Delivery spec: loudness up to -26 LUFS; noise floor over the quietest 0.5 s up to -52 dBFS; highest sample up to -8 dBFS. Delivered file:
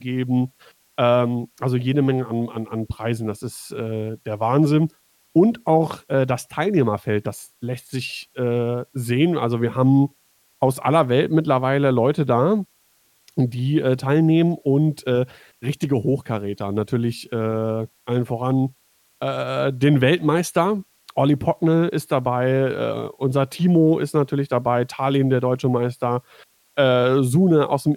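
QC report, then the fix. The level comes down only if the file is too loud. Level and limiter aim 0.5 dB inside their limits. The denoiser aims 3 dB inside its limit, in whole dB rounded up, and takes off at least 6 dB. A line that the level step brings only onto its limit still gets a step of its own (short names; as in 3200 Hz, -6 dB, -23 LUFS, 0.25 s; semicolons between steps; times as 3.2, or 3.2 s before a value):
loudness -21.0 LUFS: fail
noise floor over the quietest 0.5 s -61 dBFS: OK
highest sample -4.5 dBFS: fail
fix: gain -5.5 dB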